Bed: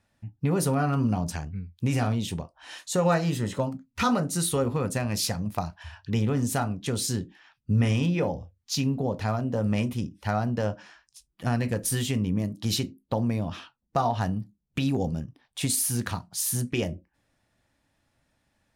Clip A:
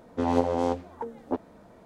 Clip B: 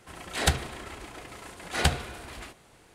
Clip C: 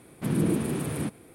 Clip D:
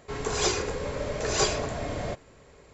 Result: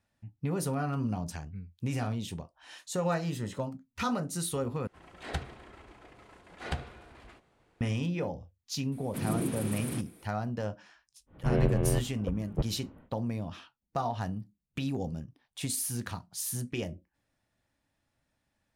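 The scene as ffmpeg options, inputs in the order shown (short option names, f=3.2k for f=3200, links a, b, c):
-filter_complex "[0:a]volume=-7dB[a];[2:a]aemphasis=mode=reproduction:type=75kf[b];[3:a]highshelf=f=3.1k:g=7.5[c];[1:a]highpass=f=230:t=q:w=0.5412,highpass=f=230:t=q:w=1.307,lowpass=f=3.4k:t=q:w=0.5176,lowpass=f=3.4k:t=q:w=0.7071,lowpass=f=3.4k:t=q:w=1.932,afreqshift=-400[d];[a]asplit=2[e][f];[e]atrim=end=4.874[g];[b]atrim=end=2.94,asetpts=PTS-STARTPTS,volume=-9.5dB[h];[f]atrim=start=7.806[i];[c]atrim=end=1.34,asetpts=PTS-STARTPTS,volume=-7.5dB,afade=t=in:d=0.004:c=hsin,afade=t=out:st=1.336:d=0.004:c=hsin,adelay=8920[j];[d]atrim=end=1.85,asetpts=PTS-STARTPTS,afade=t=in:d=0.1,afade=t=out:st=1.75:d=0.1,adelay=11260[k];[g][h]acrossfade=d=0.004:c1=hsin:c2=hsin[l];[l][i]acrossfade=d=0.004:c1=hsin:c2=hsin[m];[m][j][k]amix=inputs=3:normalize=0"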